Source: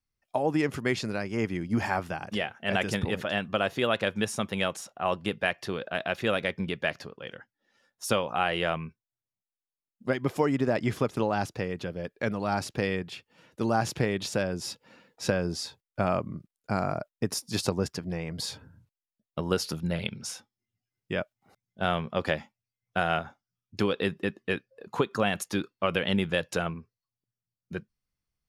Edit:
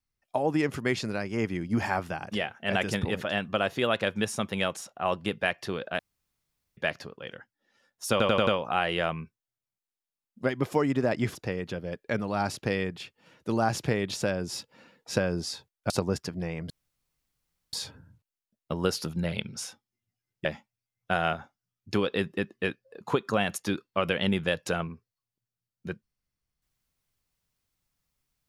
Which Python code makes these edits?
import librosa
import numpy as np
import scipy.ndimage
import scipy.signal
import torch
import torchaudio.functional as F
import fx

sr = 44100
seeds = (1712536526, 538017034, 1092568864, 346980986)

y = fx.edit(x, sr, fx.room_tone_fill(start_s=5.99, length_s=0.78),
    fx.stutter(start_s=8.11, slice_s=0.09, count=5),
    fx.cut(start_s=10.99, length_s=0.48),
    fx.cut(start_s=16.02, length_s=1.58),
    fx.insert_room_tone(at_s=18.4, length_s=1.03),
    fx.cut(start_s=21.12, length_s=1.19), tone=tone)